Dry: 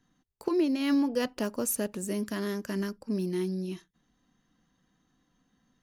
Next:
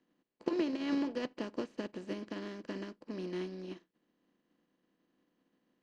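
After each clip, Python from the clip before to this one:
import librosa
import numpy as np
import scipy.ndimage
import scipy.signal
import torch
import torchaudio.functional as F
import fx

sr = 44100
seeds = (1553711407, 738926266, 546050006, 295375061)

y = fx.bin_compress(x, sr, power=0.4)
y = scipy.signal.sosfilt(scipy.signal.butter(4, 5000.0, 'lowpass', fs=sr, output='sos'), y)
y = fx.upward_expand(y, sr, threshold_db=-42.0, expansion=2.5)
y = y * librosa.db_to_amplitude(-7.0)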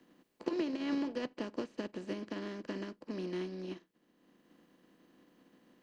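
y = fx.band_squash(x, sr, depth_pct=40)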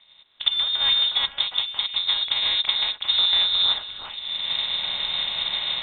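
y = fx.recorder_agc(x, sr, target_db=-21.0, rise_db_per_s=25.0, max_gain_db=30)
y = fx.echo_stepped(y, sr, ms=361, hz=2900.0, octaves=-1.4, feedback_pct=70, wet_db=-4.0)
y = fx.freq_invert(y, sr, carrier_hz=3900)
y = y * librosa.db_to_amplitude(8.0)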